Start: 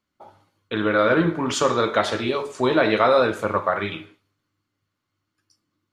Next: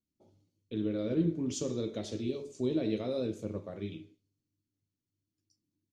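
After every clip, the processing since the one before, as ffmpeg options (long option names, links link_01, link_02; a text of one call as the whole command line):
ffmpeg -i in.wav -af "firequalizer=gain_entry='entry(290,0);entry(890,-25);entry(1400,-29);entry(2400,-15);entry(6100,-2);entry(10000,-11)':delay=0.05:min_phase=1,volume=-7dB" out.wav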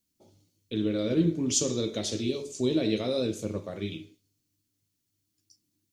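ffmpeg -i in.wav -af "highshelf=frequency=2700:gain=11.5,volume=4.5dB" out.wav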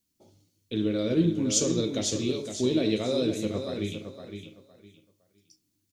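ffmpeg -i in.wav -af "aecho=1:1:511|1022|1533:0.398|0.0916|0.0211,volume=1dB" out.wav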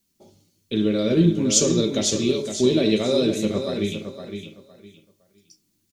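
ffmpeg -i in.wav -af "aecho=1:1:5.1:0.37,volume=6dB" out.wav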